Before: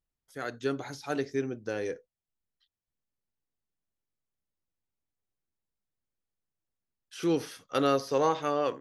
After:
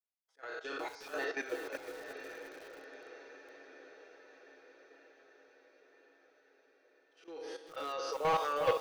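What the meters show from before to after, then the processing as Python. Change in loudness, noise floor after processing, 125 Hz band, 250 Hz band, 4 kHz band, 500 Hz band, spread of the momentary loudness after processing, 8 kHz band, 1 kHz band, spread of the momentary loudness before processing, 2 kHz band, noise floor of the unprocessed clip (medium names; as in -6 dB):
-7.5 dB, -71 dBFS, under -10 dB, -16.5 dB, -4.5 dB, -6.5 dB, 23 LU, -7.0 dB, -3.0 dB, 12 LU, -0.5 dB, under -85 dBFS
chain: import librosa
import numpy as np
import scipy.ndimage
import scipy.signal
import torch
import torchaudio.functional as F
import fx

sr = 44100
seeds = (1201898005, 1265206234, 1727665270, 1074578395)

y = fx.spec_trails(x, sr, decay_s=1.62)
y = scipy.signal.sosfilt(scipy.signal.butter(4, 410.0, 'highpass', fs=sr, output='sos'), y)
y = fx.dereverb_blind(y, sr, rt60_s=1.3)
y = y + 0.85 * np.pad(y, (int(6.2 * sr / 1000.0), 0))[:len(y)]
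y = fx.auto_swell(y, sr, attack_ms=158.0)
y = fx.level_steps(y, sr, step_db=13)
y = 10.0 ** (-30.5 / 20.0) * np.tanh(y / 10.0 ** (-30.5 / 20.0))
y = fx.tremolo_shape(y, sr, shape='saw_up', hz=0.57, depth_pct=95)
y = fx.air_absorb(y, sr, metres=110.0)
y = fx.echo_diffused(y, sr, ms=918, feedback_pct=61, wet_db=-9)
y = fx.echo_crushed(y, sr, ms=359, feedback_pct=35, bits=9, wet_db=-8)
y = F.gain(torch.from_numpy(y), 7.5).numpy()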